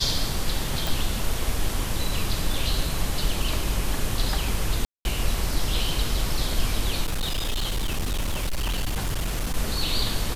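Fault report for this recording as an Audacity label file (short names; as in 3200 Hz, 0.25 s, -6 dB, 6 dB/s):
0.870000	0.870000	pop
4.850000	5.050000	gap 0.201 s
7.040000	9.570000	clipped -22 dBFS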